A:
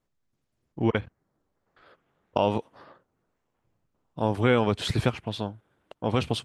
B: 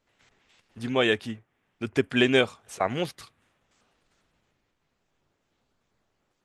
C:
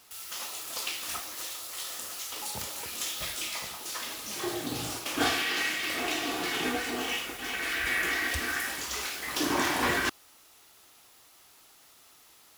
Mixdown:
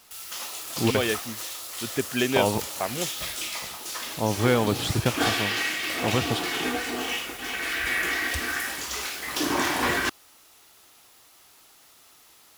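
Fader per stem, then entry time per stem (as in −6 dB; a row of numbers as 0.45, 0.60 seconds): 0.0, −3.5, +2.5 decibels; 0.00, 0.00, 0.00 seconds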